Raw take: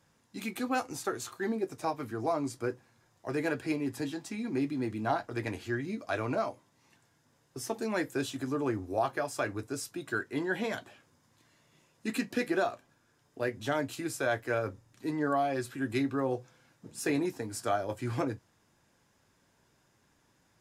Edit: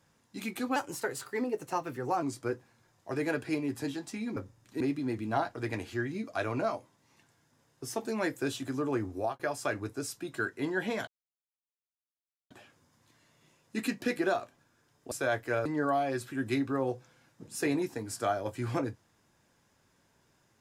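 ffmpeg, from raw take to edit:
-filter_complex "[0:a]asplit=9[a][b][c][d][e][f][g][h][i];[a]atrim=end=0.764[j];[b]atrim=start=0.76:end=2.4,asetpts=PTS-STARTPTS,asetrate=49392,aresample=44100[k];[c]atrim=start=2.396:end=4.542[l];[d]atrim=start=14.648:end=15.092[m];[e]atrim=start=4.538:end=9.13,asetpts=PTS-STARTPTS,afade=t=out:st=4.332:d=0.26:c=qsin[n];[f]atrim=start=9.13:end=10.81,asetpts=PTS-STARTPTS,afade=t=in:d=0.004:c=hsin,afade=t=out:st=1.676:d=0.004:c=hsin,apad=pad_dur=1.43[o];[g]atrim=start=10.81:end=13.422,asetpts=PTS-STARTPTS,afade=t=in:d=0.004:c=hsin[p];[h]atrim=start=14.108:end=14.652[q];[i]atrim=start=15.088[r];[j][k]acrossfade=d=0.004:c1=hsin:c2=hsin[s];[s][l]acrossfade=d=0.004:c1=hsin:c2=hsin[t];[t][m]acrossfade=d=0.004:c1=hsin:c2=hsin[u];[n][o][p]concat=n=3:v=0:a=1[v];[u][v]acrossfade=d=0.004:c1=hsin:c2=hsin[w];[w][q]acrossfade=d=0.004:c1=hsin:c2=hsin[x];[x][r]acrossfade=d=0.004:c1=hsin:c2=hsin"

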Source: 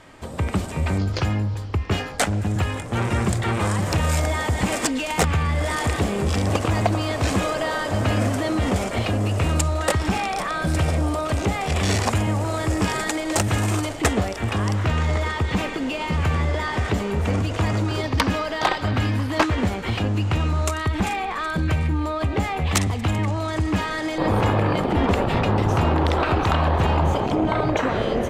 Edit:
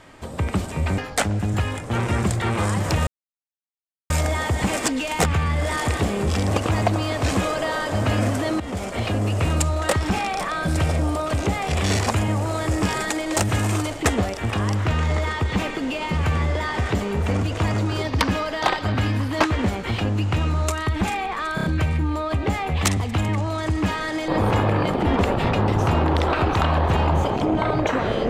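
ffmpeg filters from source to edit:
-filter_complex "[0:a]asplit=7[a][b][c][d][e][f][g];[a]atrim=end=0.982[h];[b]atrim=start=1.998:end=4.09,asetpts=PTS-STARTPTS,afade=t=out:st=2.088:d=0.004:c=hsin,apad=pad_dur=1.03[i];[c]atrim=start=4.09:end=8.59,asetpts=PTS-STARTPTS,afade=t=in:d=0.004:c=hsin,afade=t=out:st=4.496:d=0.004:c=hsin:silence=0.237137[j];[d]atrim=start=8.59:end=21.572,asetpts=PTS-STARTPTS,afade=t=in:d=0.71:c=qsin:silence=0.237137[k];[e]atrim=start=21.538:end=21.572[l];[f]atrim=start=21.538:end=21.572[m];[g]atrim=start=21.538[n];[i][j][k]concat=n=3:v=0:a=1[o];[h][o]acrossfade=d=0.004:c1=hsin:c2=hsin[p];[p][l]acrossfade=d=0.004:c1=hsin:c2=hsin[q];[q][m]acrossfade=d=0.004:c1=hsin:c2=hsin[r];[r][n]acrossfade=d=0.004:c1=hsin:c2=hsin"

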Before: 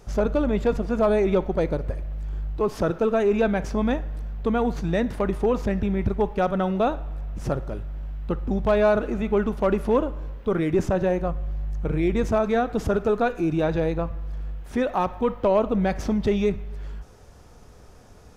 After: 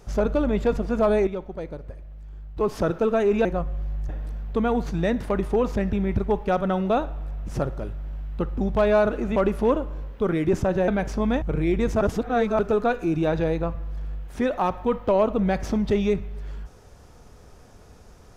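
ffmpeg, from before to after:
-filter_complex "[0:a]asplit=10[a][b][c][d][e][f][g][h][i][j];[a]atrim=end=1.272[k];[b]atrim=start=1.268:end=2.572,asetpts=PTS-STARTPTS,volume=-10dB[l];[c]atrim=start=2.568:end=3.452[m];[d]atrim=start=11.138:end=11.782[n];[e]atrim=start=3.988:end=9.262[o];[f]atrim=start=9.618:end=11.142[p];[g]atrim=start=3.448:end=3.992[q];[h]atrim=start=11.778:end=12.372[r];[i]atrim=start=12.368:end=12.952,asetpts=PTS-STARTPTS,areverse[s];[j]atrim=start=12.948[t];[k][l]acrossfade=d=0.004:c1=hsin:c2=hsin[u];[u][m]acrossfade=d=0.004:c1=hsin:c2=hsin[v];[v][n]acrossfade=d=0.004:c1=hsin:c2=hsin[w];[w][o]acrossfade=d=0.004:c1=hsin:c2=hsin[x];[x][p]acrossfade=d=0.004:c1=hsin:c2=hsin[y];[y][q]acrossfade=d=0.004:c1=hsin:c2=hsin[z];[z][r]acrossfade=d=0.004:c1=hsin:c2=hsin[aa];[aa][s]acrossfade=d=0.004:c1=hsin:c2=hsin[ab];[ab][t]acrossfade=d=0.004:c1=hsin:c2=hsin"

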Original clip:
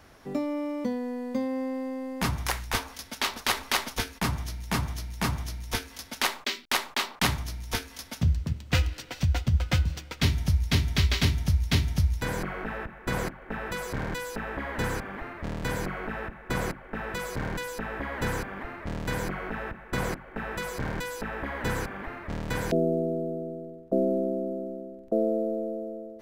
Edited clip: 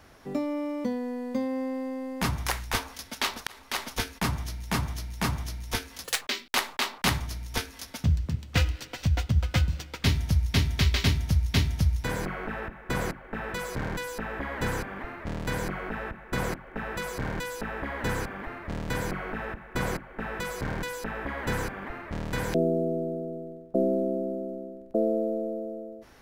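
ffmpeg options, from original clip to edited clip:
-filter_complex "[0:a]asplit=4[a][b][c][d];[a]atrim=end=3.47,asetpts=PTS-STARTPTS,afade=t=out:st=3.466:d=0.004:c=hsin[e];[b]atrim=start=3.47:end=6.044,asetpts=PTS-STARTPTS,afade=t=in:d=0.51[f];[c]atrim=start=6.04:end=6.39,asetpts=PTS-STARTPTS,asetrate=87759,aresample=44100,atrim=end_sample=7756,asetpts=PTS-STARTPTS[g];[d]atrim=start=6.386[h];[e][f]concat=n=2:v=0:a=1[i];[i][g]acrossfade=d=0.004:c1=hsin:c2=hsin[j];[j][h]acrossfade=d=0.004:c1=hsin:c2=hsin"

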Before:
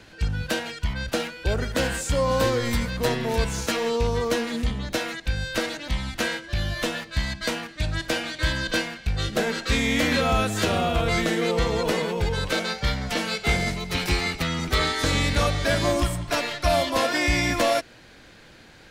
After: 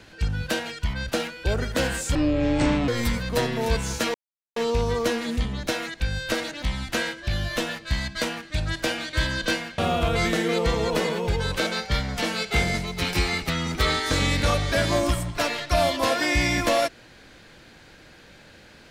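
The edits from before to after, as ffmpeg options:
-filter_complex "[0:a]asplit=5[a][b][c][d][e];[a]atrim=end=2.154[f];[b]atrim=start=2.15:end=2.56,asetpts=PTS-STARTPTS,asetrate=24696,aresample=44100,atrim=end_sample=32287,asetpts=PTS-STARTPTS[g];[c]atrim=start=2.556:end=3.82,asetpts=PTS-STARTPTS,afade=t=out:st=1.26:d=0.004:c=hsin,apad=pad_dur=0.42[h];[d]atrim=start=3.82:end=9.042,asetpts=PTS-STARTPTS,afade=t=in:d=0.004:c=hsin[i];[e]atrim=start=10.708[j];[f][g]acrossfade=d=0.004:c1=hsin:c2=hsin[k];[h][i]concat=n=2:v=0:a=1[l];[k][l]acrossfade=d=0.004:c1=hsin:c2=hsin[m];[m][j]acrossfade=d=0.004:c1=hsin:c2=hsin"

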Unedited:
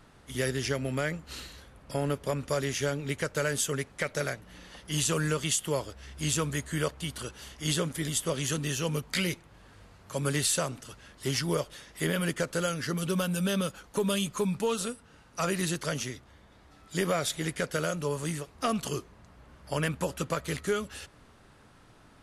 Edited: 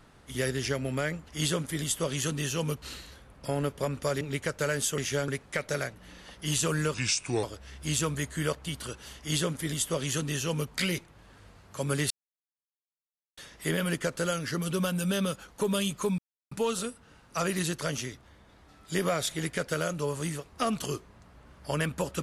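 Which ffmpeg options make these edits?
-filter_complex "[0:a]asplit=11[a][b][c][d][e][f][g][h][i][j][k];[a]atrim=end=1.282[l];[b]atrim=start=7.538:end=9.082[m];[c]atrim=start=1.278:end=2.672[n];[d]atrim=start=2.968:end=3.742[o];[e]atrim=start=2.668:end=2.972[p];[f]atrim=start=3.738:end=5.404[q];[g]atrim=start=5.4:end=5.79,asetpts=PTS-STARTPTS,asetrate=34839,aresample=44100[r];[h]atrim=start=5.786:end=10.46,asetpts=PTS-STARTPTS,afade=t=out:st=4.67:d=0.004:c=hsin[s];[i]atrim=start=10.46:end=11.73,asetpts=PTS-STARTPTS,volume=0[t];[j]atrim=start=11.73:end=14.54,asetpts=PTS-STARTPTS,afade=t=in:d=0.004:c=hsin,afade=t=out:st=2.806:d=0.004:c=hsin,apad=pad_dur=0.33[u];[k]atrim=start=14.54,asetpts=PTS-STARTPTS,afade=t=in:d=0.004:c=hsin[v];[l][m]acrossfade=d=0.004:c1=hsin:c2=hsin[w];[w][n]acrossfade=d=0.004:c1=hsin:c2=hsin[x];[x][o]acrossfade=d=0.004:c1=hsin:c2=hsin[y];[y][p]acrossfade=d=0.004:c1=hsin:c2=hsin[z];[z][q]acrossfade=d=0.004:c1=hsin:c2=hsin[aa];[aa][r]acrossfade=d=0.004:c1=hsin:c2=hsin[ab];[s][t][u][v]concat=n=4:v=0:a=1[ac];[ab][ac]acrossfade=d=0.004:c1=hsin:c2=hsin"

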